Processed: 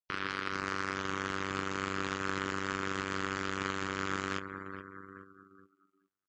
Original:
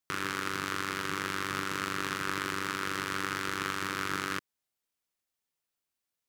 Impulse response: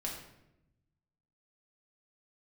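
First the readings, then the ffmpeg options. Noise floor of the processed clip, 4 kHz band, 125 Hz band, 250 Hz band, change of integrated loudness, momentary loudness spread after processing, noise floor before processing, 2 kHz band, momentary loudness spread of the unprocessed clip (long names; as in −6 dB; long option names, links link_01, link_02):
−82 dBFS, −4.0 dB, +0.5 dB, +0.5 dB, −2.5 dB, 11 LU, below −85 dBFS, −2.5 dB, 1 LU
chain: -af "aeval=exprs='sgn(val(0))*max(abs(val(0))-0.00891,0)':channel_layout=same,aecho=1:1:424|848|1272|1696|2120|2544|2968:0.398|0.227|0.129|0.0737|0.042|0.024|0.0137,afftdn=noise_reduction=35:noise_floor=-45"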